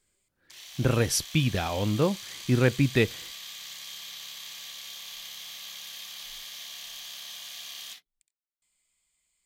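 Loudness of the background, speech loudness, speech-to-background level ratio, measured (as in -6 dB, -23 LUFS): -39.0 LUFS, -26.0 LUFS, 13.0 dB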